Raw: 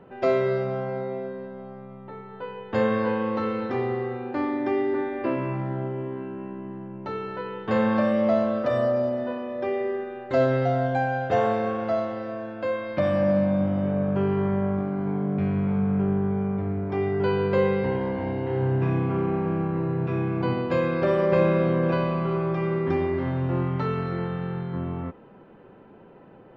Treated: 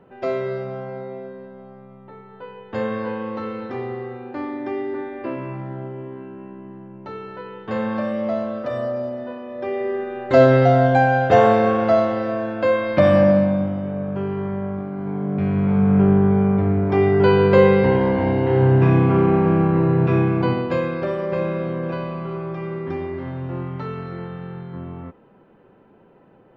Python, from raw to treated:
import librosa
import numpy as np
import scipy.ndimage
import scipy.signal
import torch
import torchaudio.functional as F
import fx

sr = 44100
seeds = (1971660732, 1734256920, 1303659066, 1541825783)

y = fx.gain(x, sr, db=fx.line((9.42, -2.0), (10.37, 9.0), (13.17, 9.0), (13.83, -1.5), (14.9, -1.5), (16.01, 9.0), (20.16, 9.0), (21.18, -3.0)))